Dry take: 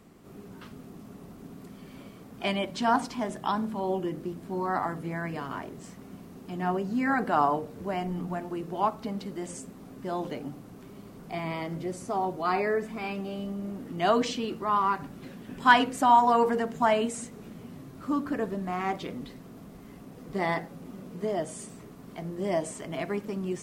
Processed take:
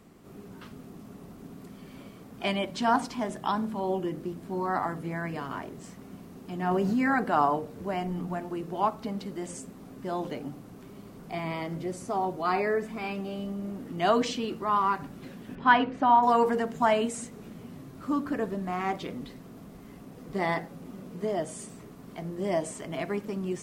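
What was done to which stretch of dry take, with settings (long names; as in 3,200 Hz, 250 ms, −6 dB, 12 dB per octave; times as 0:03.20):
0:06.71–0:07.19: envelope flattener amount 70%
0:15.55–0:16.23: high-frequency loss of the air 280 metres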